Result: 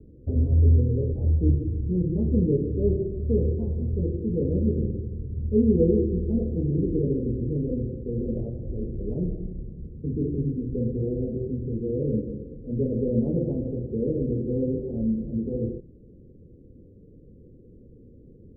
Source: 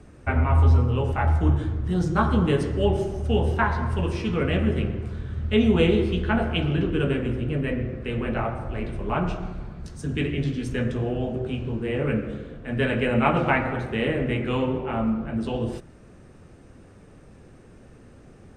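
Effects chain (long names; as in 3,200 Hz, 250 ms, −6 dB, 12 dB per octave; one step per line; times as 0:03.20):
Chebyshev low-pass filter 500 Hz, order 5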